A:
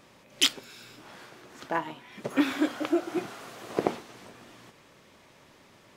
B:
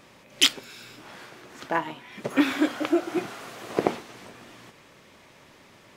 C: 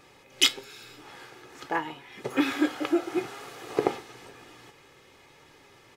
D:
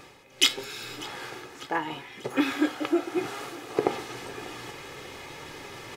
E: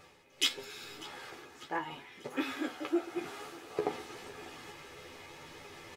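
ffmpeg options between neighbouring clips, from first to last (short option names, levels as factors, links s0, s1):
-af "equalizer=f=2200:w=1.5:g=2,volume=1.41"
-af "aecho=1:1:2.4:0.5,flanger=delay=6.5:depth=1.5:regen=81:speed=1.1:shape=triangular,volume=1.19"
-af "areverse,acompressor=mode=upward:threshold=0.0355:ratio=2.5,areverse,aecho=1:1:594|1188|1782|2376:0.1|0.052|0.027|0.0141"
-filter_complex "[0:a]flanger=delay=1.4:depth=8.4:regen=-51:speed=1.6:shape=sinusoidal,asplit=2[s0][s1];[s1]adelay=12,volume=0.596[s2];[s0][s2]amix=inputs=2:normalize=0,volume=0.531"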